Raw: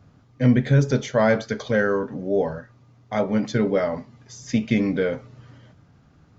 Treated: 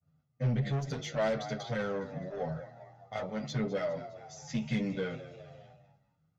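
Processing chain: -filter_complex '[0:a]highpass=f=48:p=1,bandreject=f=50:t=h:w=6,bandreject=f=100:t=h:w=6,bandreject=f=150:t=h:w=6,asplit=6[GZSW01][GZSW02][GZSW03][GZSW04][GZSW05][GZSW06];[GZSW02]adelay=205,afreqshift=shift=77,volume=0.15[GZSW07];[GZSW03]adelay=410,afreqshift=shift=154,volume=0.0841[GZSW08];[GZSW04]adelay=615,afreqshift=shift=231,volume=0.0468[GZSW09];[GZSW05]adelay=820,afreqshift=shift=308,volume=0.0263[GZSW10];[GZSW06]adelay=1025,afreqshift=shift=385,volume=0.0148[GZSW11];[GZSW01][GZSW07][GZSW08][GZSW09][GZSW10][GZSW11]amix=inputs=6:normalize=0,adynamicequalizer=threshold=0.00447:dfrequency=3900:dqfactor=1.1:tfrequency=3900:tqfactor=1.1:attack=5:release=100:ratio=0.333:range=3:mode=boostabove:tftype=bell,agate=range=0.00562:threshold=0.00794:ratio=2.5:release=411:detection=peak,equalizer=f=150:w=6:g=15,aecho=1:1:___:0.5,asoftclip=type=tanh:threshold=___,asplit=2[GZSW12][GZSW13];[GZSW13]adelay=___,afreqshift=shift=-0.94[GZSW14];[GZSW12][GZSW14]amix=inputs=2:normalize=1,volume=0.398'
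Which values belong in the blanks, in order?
1.5, 0.168, 8.6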